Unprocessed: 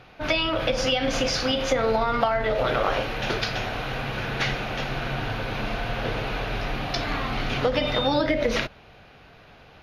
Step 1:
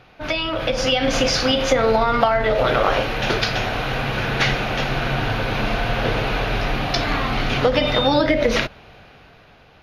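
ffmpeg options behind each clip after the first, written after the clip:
ffmpeg -i in.wav -af "dynaudnorm=framelen=150:gausssize=11:maxgain=7dB" out.wav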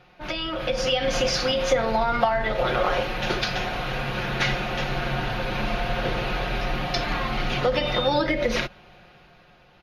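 ffmpeg -i in.wav -af "aecho=1:1:5.6:0.56,volume=-6dB" out.wav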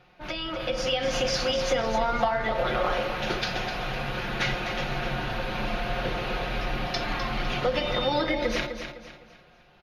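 ffmpeg -i in.wav -af "aecho=1:1:254|508|762|1016:0.376|0.132|0.046|0.0161,volume=-3.5dB" out.wav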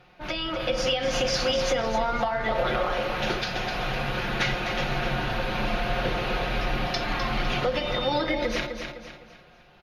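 ffmpeg -i in.wav -af "alimiter=limit=-17dB:level=0:latency=1:release=377,volume=2.5dB" out.wav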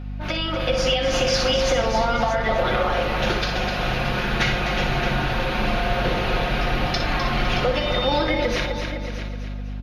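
ffmpeg -i in.wav -filter_complex "[0:a]aeval=exprs='val(0)+0.0178*(sin(2*PI*50*n/s)+sin(2*PI*2*50*n/s)/2+sin(2*PI*3*50*n/s)/3+sin(2*PI*4*50*n/s)/4+sin(2*PI*5*50*n/s)/5)':channel_layout=same,asplit=2[link_01][link_02];[link_02]aecho=0:1:60|624:0.376|0.266[link_03];[link_01][link_03]amix=inputs=2:normalize=0,volume=3.5dB" out.wav

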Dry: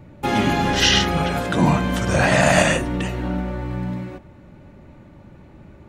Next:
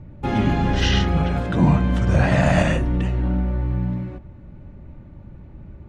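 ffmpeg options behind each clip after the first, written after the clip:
ffmpeg -i in.wav -af "aemphasis=mode=reproduction:type=bsi,volume=-5dB" out.wav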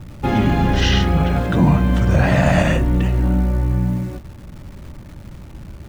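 ffmpeg -i in.wav -filter_complex "[0:a]asplit=2[link_01][link_02];[link_02]alimiter=limit=-13dB:level=0:latency=1:release=129,volume=0dB[link_03];[link_01][link_03]amix=inputs=2:normalize=0,acrusher=bits=8:dc=4:mix=0:aa=0.000001,volume=-1.5dB" out.wav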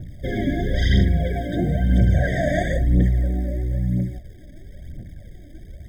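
ffmpeg -i in.wav -af "aphaser=in_gain=1:out_gain=1:delay=3.6:decay=0.61:speed=1:type=triangular,afftfilt=real='re*eq(mod(floor(b*sr/1024/770),2),0)':imag='im*eq(mod(floor(b*sr/1024/770),2),0)':win_size=1024:overlap=0.75,volume=-6.5dB" out.wav

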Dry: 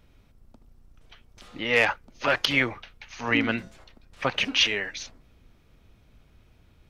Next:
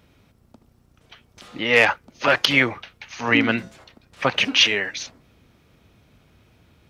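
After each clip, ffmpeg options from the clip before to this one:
ffmpeg -i in.wav -af "highpass=88,volume=5.5dB" out.wav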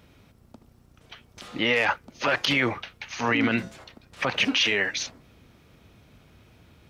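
ffmpeg -i in.wav -af "alimiter=limit=-14dB:level=0:latency=1:release=40,volume=1.5dB" out.wav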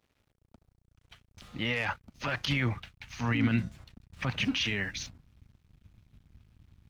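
ffmpeg -i in.wav -af "aeval=exprs='sgn(val(0))*max(abs(val(0))-0.00211,0)':channel_layout=same,asubboost=boost=11:cutoff=150,volume=-8dB" out.wav

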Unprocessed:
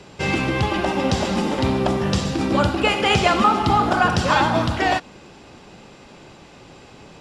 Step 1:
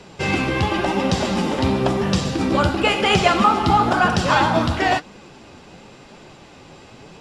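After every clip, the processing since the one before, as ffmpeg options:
ffmpeg -i in.wav -af "flanger=delay=3.9:depth=9.6:regen=57:speed=0.97:shape=triangular,volume=5dB" out.wav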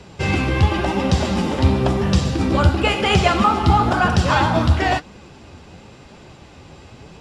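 ffmpeg -i in.wav -af "equalizer=frequency=71:width=0.98:gain=12,volume=-1dB" out.wav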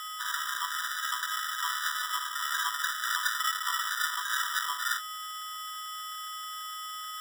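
ffmpeg -i in.wav -af "aeval=exprs='val(0)+0.112*sin(2*PI*890*n/s)':channel_layout=same,acrusher=samples=41:mix=1:aa=0.000001,afftfilt=real='re*eq(mod(floor(b*sr/1024/990),2),1)':imag='im*eq(mod(floor(b*sr/1024/990),2),1)':win_size=1024:overlap=0.75,volume=-2.5dB" out.wav

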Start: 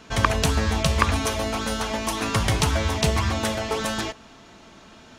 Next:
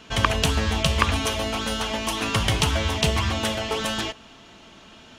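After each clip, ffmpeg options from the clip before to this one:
ffmpeg -i in.wav -af "equalizer=frequency=3000:width=2.9:gain=7.5,volume=-1dB" out.wav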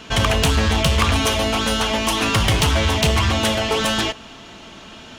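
ffmpeg -i in.wav -af "asoftclip=type=tanh:threshold=-19dB,volume=8dB" out.wav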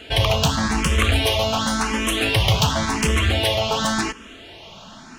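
ffmpeg -i in.wav -filter_complex "[0:a]asplit=2[link_01][link_02];[link_02]afreqshift=0.91[link_03];[link_01][link_03]amix=inputs=2:normalize=1,volume=1.5dB" out.wav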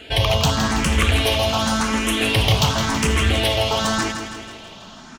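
ffmpeg -i in.wav -af "aecho=1:1:163|326|489|652|815|978|1141:0.398|0.219|0.12|0.0662|0.0364|0.02|0.011" out.wav

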